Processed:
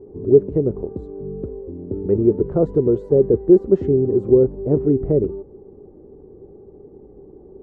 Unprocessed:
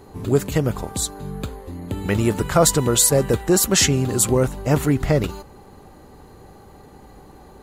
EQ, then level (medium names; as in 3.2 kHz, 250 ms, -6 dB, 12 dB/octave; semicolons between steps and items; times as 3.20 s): resonant low-pass 400 Hz, resonance Q 4.9; -4.0 dB